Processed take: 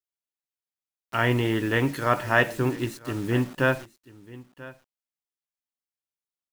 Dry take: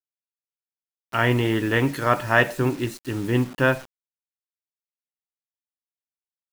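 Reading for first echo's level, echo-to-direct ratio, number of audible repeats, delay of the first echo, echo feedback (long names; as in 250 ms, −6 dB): −19.5 dB, −19.5 dB, 1, 988 ms, repeats not evenly spaced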